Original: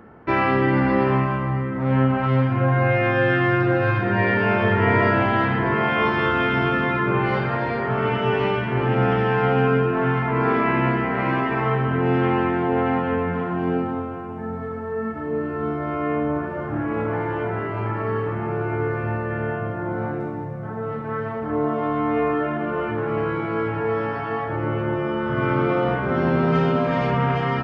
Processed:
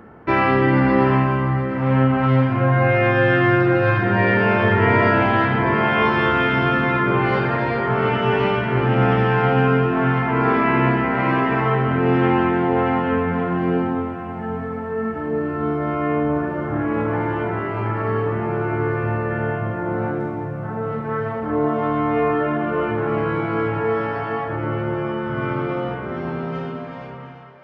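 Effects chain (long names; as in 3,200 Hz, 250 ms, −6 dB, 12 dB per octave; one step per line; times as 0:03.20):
fade-out on the ending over 3.90 s
echo with a time of its own for lows and highs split 530 Hz, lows 209 ms, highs 708 ms, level −14 dB
level +2.5 dB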